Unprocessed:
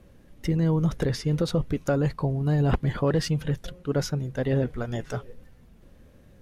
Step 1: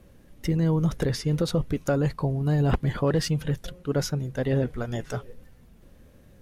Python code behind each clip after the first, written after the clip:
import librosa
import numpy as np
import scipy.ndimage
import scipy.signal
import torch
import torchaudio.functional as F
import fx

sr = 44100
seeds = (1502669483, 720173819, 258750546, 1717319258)

y = fx.high_shelf(x, sr, hz=7600.0, db=5.5)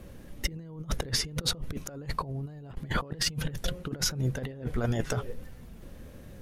y = fx.over_compress(x, sr, threshold_db=-31.0, ratio=-0.5)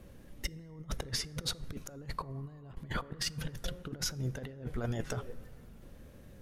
y = fx.rev_plate(x, sr, seeds[0], rt60_s=3.2, hf_ratio=0.3, predelay_ms=0, drr_db=19.0)
y = y * 10.0 ** (-6.5 / 20.0)